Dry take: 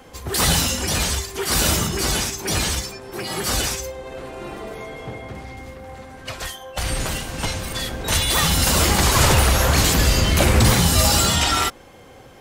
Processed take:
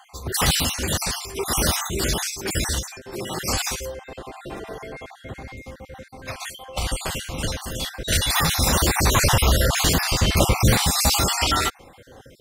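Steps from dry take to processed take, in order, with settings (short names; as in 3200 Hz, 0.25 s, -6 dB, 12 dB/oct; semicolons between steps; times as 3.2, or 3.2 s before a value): random spectral dropouts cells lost 41%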